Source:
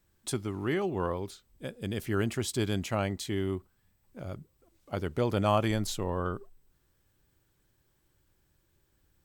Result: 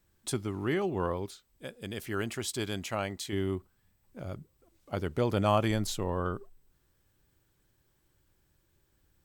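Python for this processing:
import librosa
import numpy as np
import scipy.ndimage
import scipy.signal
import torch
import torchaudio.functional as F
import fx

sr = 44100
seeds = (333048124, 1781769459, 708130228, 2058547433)

y = fx.low_shelf(x, sr, hz=400.0, db=-7.5, at=(1.26, 3.33))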